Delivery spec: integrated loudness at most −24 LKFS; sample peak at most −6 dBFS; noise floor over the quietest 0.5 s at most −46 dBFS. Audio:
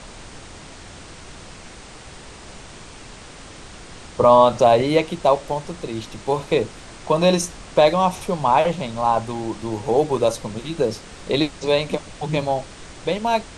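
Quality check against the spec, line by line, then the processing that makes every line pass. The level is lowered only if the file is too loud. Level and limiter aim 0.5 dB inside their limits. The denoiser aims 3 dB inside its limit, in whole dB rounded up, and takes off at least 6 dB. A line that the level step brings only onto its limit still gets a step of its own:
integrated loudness −20.5 LKFS: out of spec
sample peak −3.0 dBFS: out of spec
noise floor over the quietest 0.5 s −40 dBFS: out of spec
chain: broadband denoise 6 dB, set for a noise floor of −40 dBFS
level −4 dB

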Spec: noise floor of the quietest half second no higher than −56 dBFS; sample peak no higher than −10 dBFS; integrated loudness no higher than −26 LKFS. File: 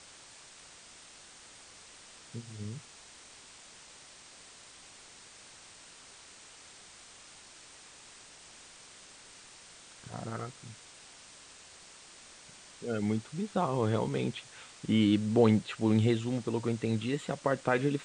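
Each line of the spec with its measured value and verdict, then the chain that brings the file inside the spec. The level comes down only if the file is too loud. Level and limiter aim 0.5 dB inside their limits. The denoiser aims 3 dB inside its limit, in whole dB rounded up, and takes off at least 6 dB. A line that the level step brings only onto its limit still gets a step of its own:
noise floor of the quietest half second −54 dBFS: out of spec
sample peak −11.5 dBFS: in spec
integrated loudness −31.0 LKFS: in spec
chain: broadband denoise 6 dB, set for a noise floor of −54 dBFS

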